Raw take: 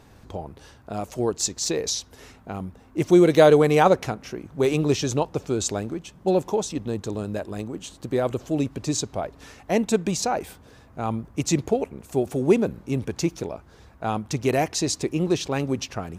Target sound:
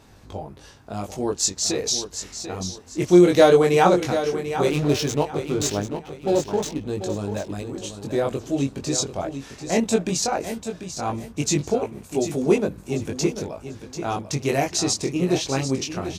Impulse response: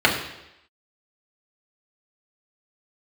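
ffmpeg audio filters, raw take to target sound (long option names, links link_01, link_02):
-filter_complex "[0:a]equalizer=frequency=5800:width=0.66:gain=4,asettb=1/sr,asplit=3[link_01][link_02][link_03];[link_01]atrim=end=4.694[link_04];[link_02]atrim=start=4.69:end=6.88,asetpts=PTS-STARTPTS,afade=type=in:duration=0.004:curve=qsin,afade=type=out:start_time=2.186:duration=0.004:curve=qsin,adynamicsmooth=sensitivity=7.5:basefreq=520[link_05];[link_03]atrim=start=6.876[link_06];[link_04][link_05]acrossfade=duration=0.004:curve1=hsin:curve2=qsin[link_07];[link_07][link_06]acrossfade=duration=0.004:curve1=qsin:curve2=hsin,flanger=delay=19.5:depth=3:speed=0.16,aecho=1:1:741|1482|2223:0.316|0.0949|0.0285,volume=3dB"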